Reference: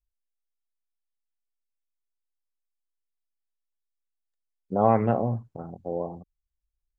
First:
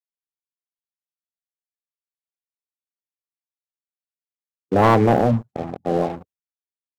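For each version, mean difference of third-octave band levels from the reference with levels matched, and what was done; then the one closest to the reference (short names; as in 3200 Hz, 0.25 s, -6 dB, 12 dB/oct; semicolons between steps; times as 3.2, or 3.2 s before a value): 7.5 dB: bin magnitudes rounded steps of 30 dB; HPF 87 Hz 24 dB/oct; sample leveller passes 3; gate with hold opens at -38 dBFS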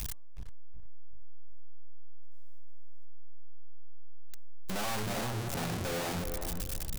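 23.5 dB: infinite clipping; high shelf 2500 Hz +6 dB; de-hum 145.2 Hz, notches 8; on a send: darkening echo 0.369 s, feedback 36%, low-pass 850 Hz, level -4 dB; on the sum: gain -3.5 dB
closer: first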